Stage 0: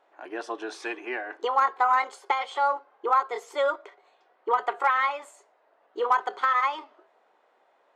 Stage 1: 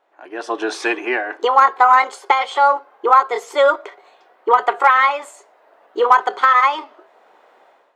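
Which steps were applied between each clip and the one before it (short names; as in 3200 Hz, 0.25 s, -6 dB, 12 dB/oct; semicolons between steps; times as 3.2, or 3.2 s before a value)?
AGC gain up to 14 dB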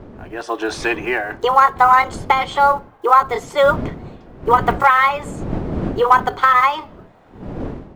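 block floating point 7-bit; wind noise 310 Hz -30 dBFS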